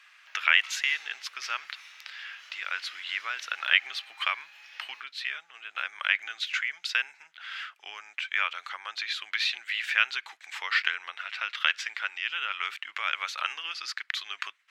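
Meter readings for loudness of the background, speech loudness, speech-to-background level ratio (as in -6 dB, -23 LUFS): -47.0 LUFS, -29.5 LUFS, 17.5 dB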